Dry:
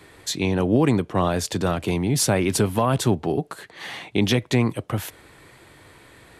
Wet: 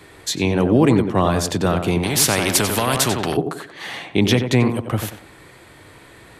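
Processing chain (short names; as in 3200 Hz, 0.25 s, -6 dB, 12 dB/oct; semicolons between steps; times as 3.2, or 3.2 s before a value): tape echo 92 ms, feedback 37%, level -5 dB, low-pass 1400 Hz; 2.03–3.37 spectral compressor 2:1; gain +3.5 dB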